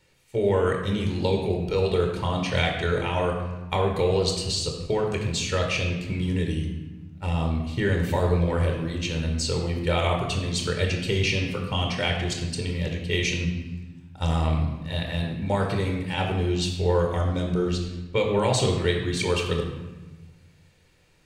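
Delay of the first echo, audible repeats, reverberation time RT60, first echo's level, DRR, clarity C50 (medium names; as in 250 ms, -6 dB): no echo, no echo, 1.2 s, no echo, 1.5 dB, 4.5 dB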